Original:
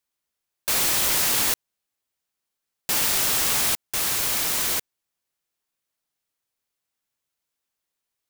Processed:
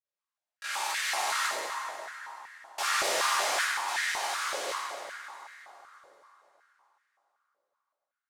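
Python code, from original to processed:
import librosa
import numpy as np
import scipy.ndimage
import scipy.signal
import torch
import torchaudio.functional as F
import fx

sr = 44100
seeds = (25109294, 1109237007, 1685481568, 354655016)

y = scipy.signal.medfilt(x, 3)
y = fx.doppler_pass(y, sr, speed_mps=21, closest_m=25.0, pass_at_s=2.62)
y = scipy.signal.sosfilt(scipy.signal.butter(2, 12000.0, 'lowpass', fs=sr, output='sos'), y)
y = fx.echo_heads(y, sr, ms=172, heads='first and second', feedback_pct=59, wet_db=-21.0)
y = fx.granulator(y, sr, seeds[0], grain_ms=100.0, per_s=20.0, spray_ms=30.0, spread_st=0)
y = fx.rev_fdn(y, sr, rt60_s=3.8, lf_ratio=1.0, hf_ratio=0.45, size_ms=50.0, drr_db=-8.0)
y = fx.filter_held_highpass(y, sr, hz=5.3, low_hz=530.0, high_hz=1800.0)
y = F.gain(torch.from_numpy(y), -9.0).numpy()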